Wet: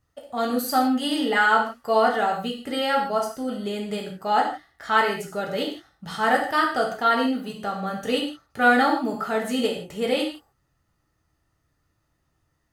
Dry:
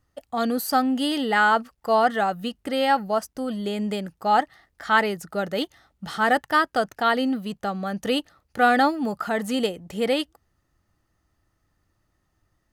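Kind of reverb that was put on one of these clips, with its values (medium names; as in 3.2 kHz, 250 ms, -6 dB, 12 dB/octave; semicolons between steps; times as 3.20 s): gated-style reverb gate 190 ms falling, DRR -1.5 dB; trim -3.5 dB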